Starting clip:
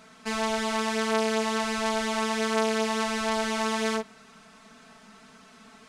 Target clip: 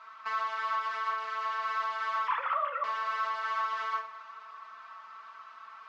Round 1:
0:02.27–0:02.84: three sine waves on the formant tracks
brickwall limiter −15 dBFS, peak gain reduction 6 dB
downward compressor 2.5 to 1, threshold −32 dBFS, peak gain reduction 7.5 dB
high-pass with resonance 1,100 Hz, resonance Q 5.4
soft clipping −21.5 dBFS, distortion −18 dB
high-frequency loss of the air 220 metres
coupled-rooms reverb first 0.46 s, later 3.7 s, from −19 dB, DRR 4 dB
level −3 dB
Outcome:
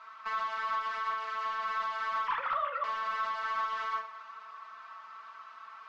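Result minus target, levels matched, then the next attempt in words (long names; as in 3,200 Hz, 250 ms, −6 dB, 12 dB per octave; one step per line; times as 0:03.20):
soft clipping: distortion +11 dB
0:02.27–0:02.84: three sine waves on the formant tracks
brickwall limiter −15 dBFS, peak gain reduction 6 dB
downward compressor 2.5 to 1, threshold −32 dBFS, peak gain reduction 7.5 dB
high-pass with resonance 1,100 Hz, resonance Q 5.4
soft clipping −14.5 dBFS, distortion −29 dB
high-frequency loss of the air 220 metres
coupled-rooms reverb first 0.46 s, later 3.7 s, from −19 dB, DRR 4 dB
level −3 dB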